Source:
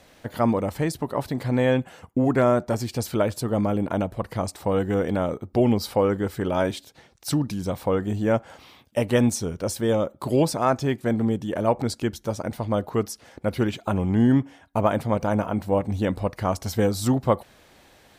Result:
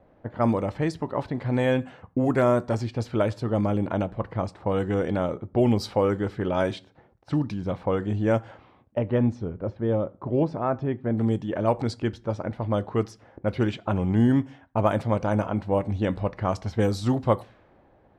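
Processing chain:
low-pass that shuts in the quiet parts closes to 840 Hz, open at −16 dBFS
0:08.98–0:11.18: head-to-tape spacing loss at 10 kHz 44 dB
convolution reverb RT60 0.40 s, pre-delay 4 ms, DRR 15 dB
level −1.5 dB

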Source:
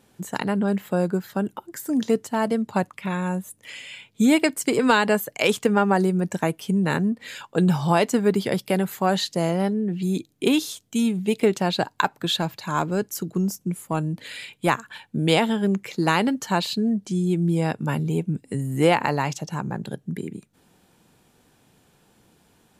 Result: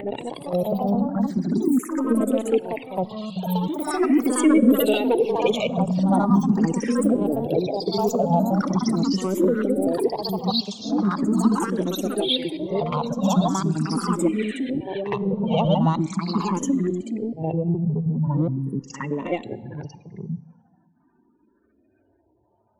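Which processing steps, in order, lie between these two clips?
slices reordered back to front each 105 ms, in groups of 5
time-frequency box erased 0:06.92–0:08.63, 890–3,700 Hz
low-pass that shuts in the quiet parts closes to 2,400 Hz, open at −20.5 dBFS
gate on every frequency bin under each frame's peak −15 dB strong
high-pass filter 87 Hz 12 dB per octave
high-shelf EQ 11,000 Hz +8.5 dB
in parallel at −3.5 dB: soft clipping −19 dBFS, distortion −11 dB
on the sum: flanger swept by the level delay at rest 3.3 ms, full sweep at −18.5 dBFS
delay with pitch and tempo change per echo 209 ms, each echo +3 semitones, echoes 2
on a send: backwards echo 62 ms −10.5 dB
on the sum: dense smooth reverb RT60 1.6 s, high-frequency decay 0.75×, DRR 18.5 dB
frequency shifter mixed with the dry sound +0.41 Hz

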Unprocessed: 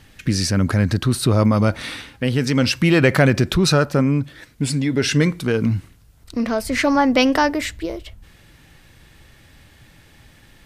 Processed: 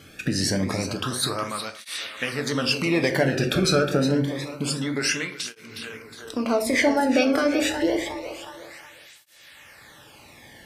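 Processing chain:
downward compressor, threshold −22 dBFS, peak gain reduction 12 dB
echo with a time of its own for lows and highs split 400 Hz, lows 163 ms, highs 363 ms, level −9.5 dB
rectangular room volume 61 cubic metres, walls mixed, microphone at 0.38 metres
through-zero flanger with one copy inverted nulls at 0.27 Hz, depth 1.1 ms
level +5.5 dB

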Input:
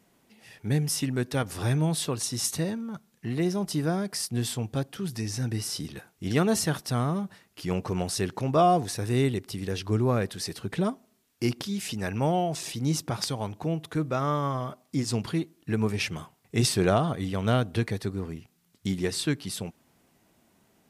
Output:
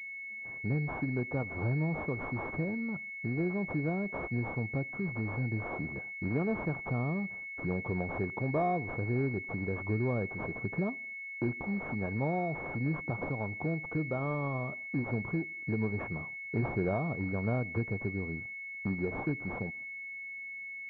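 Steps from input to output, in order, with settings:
noise gate −53 dBFS, range −12 dB
downward compressor 2 to 1, threshold −35 dBFS, peak gain reduction 10 dB
switching amplifier with a slow clock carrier 2,200 Hz
level +1 dB

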